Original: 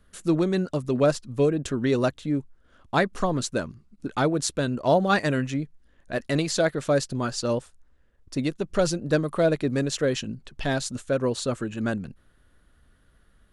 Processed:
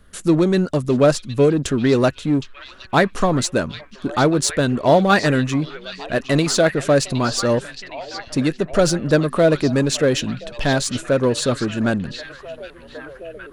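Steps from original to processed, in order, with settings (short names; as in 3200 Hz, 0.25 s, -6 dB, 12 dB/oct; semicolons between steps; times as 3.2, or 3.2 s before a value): in parallel at -6.5 dB: overloaded stage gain 28.5 dB; on the sum: delay with a stepping band-pass 0.765 s, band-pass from 3600 Hz, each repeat -0.7 oct, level -7 dB; gain +5.5 dB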